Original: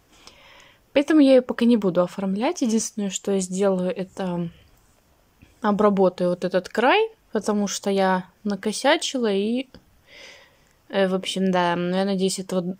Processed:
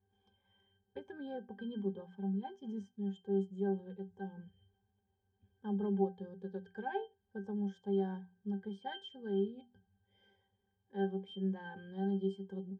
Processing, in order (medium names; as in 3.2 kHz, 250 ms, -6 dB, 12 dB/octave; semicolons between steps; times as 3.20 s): hum notches 60/120/180/240 Hz; pitch-class resonator G, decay 0.19 s; trim -8 dB